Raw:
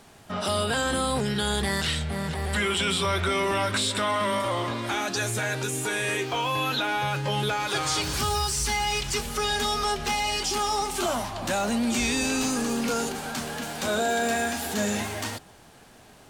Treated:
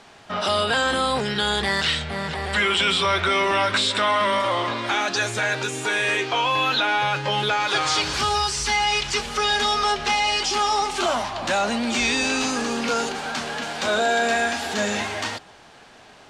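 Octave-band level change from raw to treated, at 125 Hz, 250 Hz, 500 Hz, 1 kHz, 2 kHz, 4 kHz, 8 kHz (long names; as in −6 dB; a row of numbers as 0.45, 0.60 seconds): −2.5, 0.0, +3.5, +5.5, +6.5, +6.0, 0.0 decibels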